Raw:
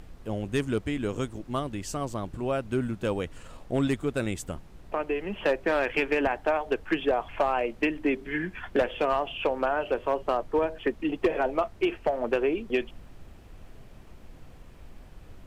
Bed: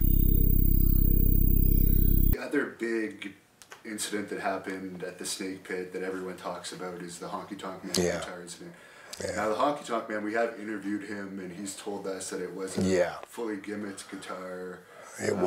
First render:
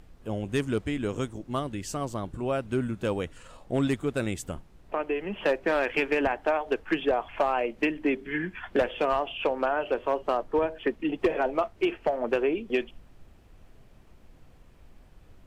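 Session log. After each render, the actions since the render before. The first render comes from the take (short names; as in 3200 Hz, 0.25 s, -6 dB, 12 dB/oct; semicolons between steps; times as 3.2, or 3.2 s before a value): noise print and reduce 6 dB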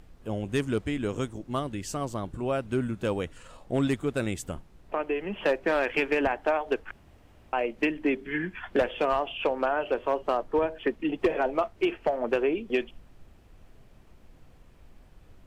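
6.91–7.53 room tone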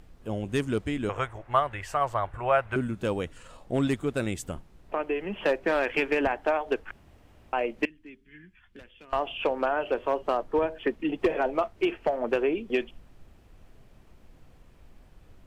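1.09–2.76 EQ curve 120 Hz 0 dB, 180 Hz -14 dB, 270 Hz -15 dB, 680 Hz +9 dB, 2000 Hz +11 dB, 4200 Hz -6 dB, 6600 Hz -9 dB, 11000 Hz -6 dB; 7.85–9.13 passive tone stack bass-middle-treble 6-0-2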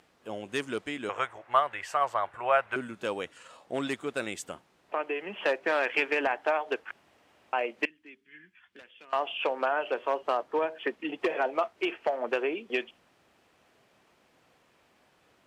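weighting filter A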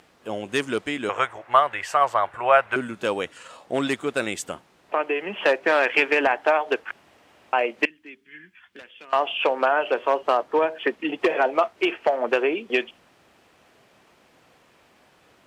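gain +7.5 dB; limiter -3 dBFS, peak gain reduction 1 dB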